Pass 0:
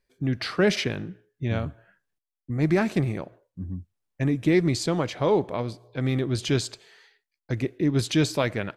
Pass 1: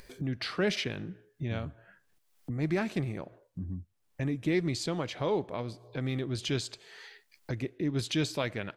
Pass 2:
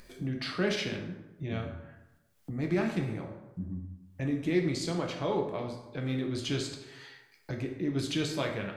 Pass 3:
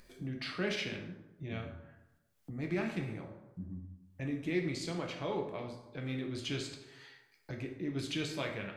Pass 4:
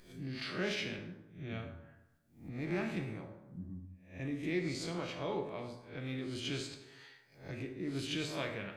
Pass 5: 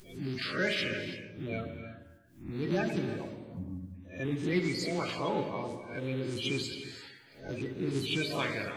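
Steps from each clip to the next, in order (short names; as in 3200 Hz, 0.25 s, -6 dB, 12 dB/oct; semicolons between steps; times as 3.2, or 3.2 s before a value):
dynamic EQ 3200 Hz, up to +4 dB, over -41 dBFS, Q 1.1; upward compressor, threshold -22 dBFS; gain -8 dB
plate-style reverb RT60 0.97 s, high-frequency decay 0.6×, DRR 1 dB; gain -2.5 dB
dynamic EQ 2400 Hz, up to +5 dB, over -52 dBFS, Q 1.7; gain -6 dB
spectral swells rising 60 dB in 0.41 s; gain -2.5 dB
bin magnitudes rounded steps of 30 dB; non-linear reverb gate 0.37 s rising, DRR 9.5 dB; gain +6 dB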